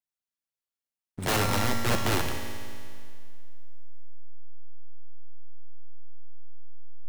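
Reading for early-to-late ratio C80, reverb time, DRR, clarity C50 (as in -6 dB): 5.0 dB, 2.2 s, 2.0 dB, 4.0 dB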